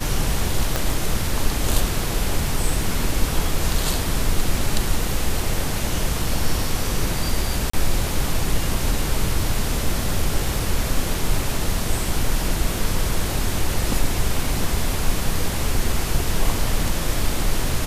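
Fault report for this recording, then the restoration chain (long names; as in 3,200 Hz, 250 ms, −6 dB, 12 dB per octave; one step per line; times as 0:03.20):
0:00.76: click −5 dBFS
0:07.70–0:07.73: drop-out 34 ms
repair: click removal
repair the gap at 0:07.70, 34 ms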